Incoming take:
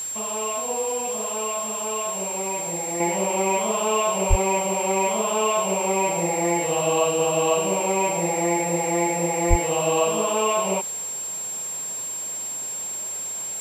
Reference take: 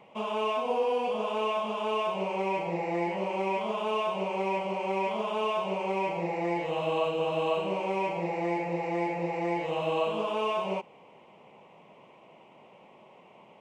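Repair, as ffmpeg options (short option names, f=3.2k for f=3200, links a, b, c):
-filter_complex "[0:a]bandreject=f=7.5k:w=30,asplit=3[a][b][c];[a]afade=t=out:st=4.29:d=0.02[d];[b]highpass=f=140:w=0.5412,highpass=f=140:w=1.3066,afade=t=in:st=4.29:d=0.02,afade=t=out:st=4.41:d=0.02[e];[c]afade=t=in:st=4.41:d=0.02[f];[d][e][f]amix=inputs=3:normalize=0,asplit=3[g][h][i];[g]afade=t=out:st=9.49:d=0.02[j];[h]highpass=f=140:w=0.5412,highpass=f=140:w=1.3066,afade=t=in:st=9.49:d=0.02,afade=t=out:st=9.61:d=0.02[k];[i]afade=t=in:st=9.61:d=0.02[l];[j][k][l]amix=inputs=3:normalize=0,afwtdn=0.0079,asetnsamples=n=441:p=0,asendcmd='3 volume volume -7dB',volume=0dB"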